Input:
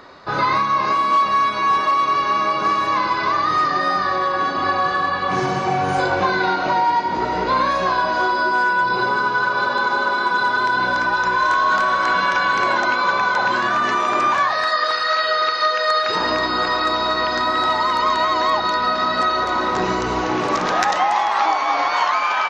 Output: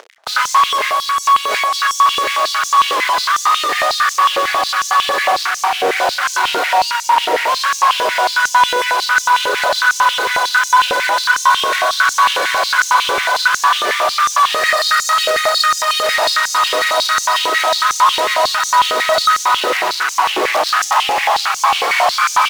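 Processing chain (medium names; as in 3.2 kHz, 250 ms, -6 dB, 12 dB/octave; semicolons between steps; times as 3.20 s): 0.87–1.74 s: compressor with a negative ratio -23 dBFS, ratio -1; phaser 1.7 Hz, delay 1.7 ms, feedback 28%; fuzz box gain 31 dB, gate -36 dBFS; on a send at -15 dB: reverberation RT60 0.35 s, pre-delay 156 ms; on the sum: step-sequenced high-pass 11 Hz 460–6200 Hz; trim -3.5 dB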